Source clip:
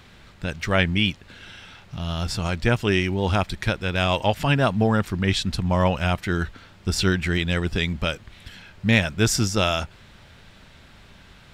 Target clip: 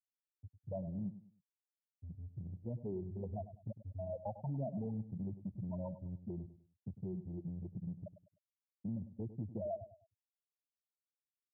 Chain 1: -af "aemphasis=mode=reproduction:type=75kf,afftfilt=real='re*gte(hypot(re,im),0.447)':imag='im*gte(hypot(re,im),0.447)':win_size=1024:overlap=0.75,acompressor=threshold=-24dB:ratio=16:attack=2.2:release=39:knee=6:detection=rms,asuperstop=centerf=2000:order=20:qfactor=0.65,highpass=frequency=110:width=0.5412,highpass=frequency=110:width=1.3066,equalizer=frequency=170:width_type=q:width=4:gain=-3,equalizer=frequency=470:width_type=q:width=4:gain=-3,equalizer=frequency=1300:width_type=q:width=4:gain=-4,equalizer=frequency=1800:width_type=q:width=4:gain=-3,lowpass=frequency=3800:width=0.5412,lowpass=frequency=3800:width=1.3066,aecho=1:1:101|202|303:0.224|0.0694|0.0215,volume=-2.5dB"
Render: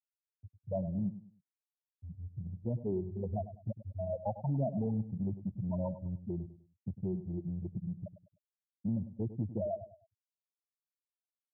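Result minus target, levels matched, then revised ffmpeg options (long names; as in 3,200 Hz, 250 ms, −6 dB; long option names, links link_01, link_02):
downward compressor: peak gain reduction −7 dB
-af "aemphasis=mode=reproduction:type=75kf,afftfilt=real='re*gte(hypot(re,im),0.447)':imag='im*gte(hypot(re,im),0.447)':win_size=1024:overlap=0.75,acompressor=threshold=-31.5dB:ratio=16:attack=2.2:release=39:knee=6:detection=rms,asuperstop=centerf=2000:order=20:qfactor=0.65,highpass=frequency=110:width=0.5412,highpass=frequency=110:width=1.3066,equalizer=frequency=170:width_type=q:width=4:gain=-3,equalizer=frequency=470:width_type=q:width=4:gain=-3,equalizer=frequency=1300:width_type=q:width=4:gain=-4,equalizer=frequency=1800:width_type=q:width=4:gain=-3,lowpass=frequency=3800:width=0.5412,lowpass=frequency=3800:width=1.3066,aecho=1:1:101|202|303:0.224|0.0694|0.0215,volume=-2.5dB"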